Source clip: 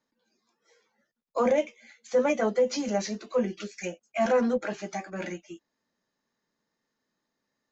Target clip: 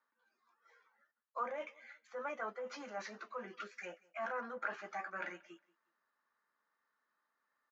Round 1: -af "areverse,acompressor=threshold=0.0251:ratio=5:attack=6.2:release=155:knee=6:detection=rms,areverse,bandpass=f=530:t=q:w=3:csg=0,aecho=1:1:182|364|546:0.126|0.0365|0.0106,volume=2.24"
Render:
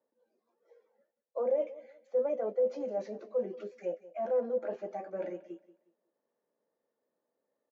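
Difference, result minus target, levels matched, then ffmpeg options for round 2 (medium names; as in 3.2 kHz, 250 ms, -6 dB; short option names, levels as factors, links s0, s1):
1 kHz band -11.0 dB; echo-to-direct +7 dB
-af "areverse,acompressor=threshold=0.0251:ratio=5:attack=6.2:release=155:knee=6:detection=rms,areverse,bandpass=f=1300:t=q:w=3:csg=0,aecho=1:1:182|364:0.0562|0.0163,volume=2.24"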